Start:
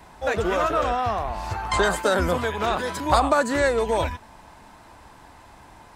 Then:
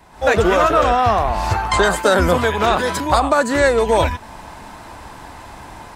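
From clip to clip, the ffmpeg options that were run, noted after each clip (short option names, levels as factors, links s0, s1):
-af "dynaudnorm=f=110:g=3:m=4.22,volume=0.891"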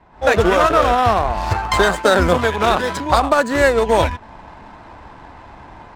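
-af "aeval=exprs='0.841*(cos(1*acos(clip(val(0)/0.841,-1,1)))-cos(1*PI/2))+0.0376*(cos(7*acos(clip(val(0)/0.841,-1,1)))-cos(7*PI/2))':c=same,adynamicsmooth=sensitivity=6:basefreq=2500,volume=1.12"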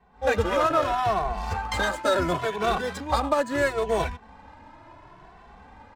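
-filter_complex "[0:a]asplit=2[s0][s1];[s1]adelay=2.2,afreqshift=0.73[s2];[s0][s2]amix=inputs=2:normalize=1,volume=0.473"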